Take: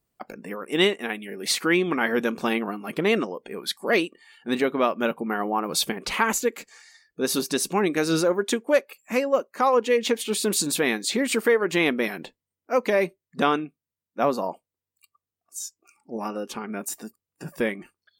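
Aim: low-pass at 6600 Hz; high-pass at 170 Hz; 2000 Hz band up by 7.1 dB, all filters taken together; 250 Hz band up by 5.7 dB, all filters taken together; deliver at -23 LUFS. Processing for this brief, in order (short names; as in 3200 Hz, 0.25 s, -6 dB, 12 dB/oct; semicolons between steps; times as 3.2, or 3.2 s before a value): HPF 170 Hz; LPF 6600 Hz; bell 250 Hz +8 dB; bell 2000 Hz +8.5 dB; gain -2.5 dB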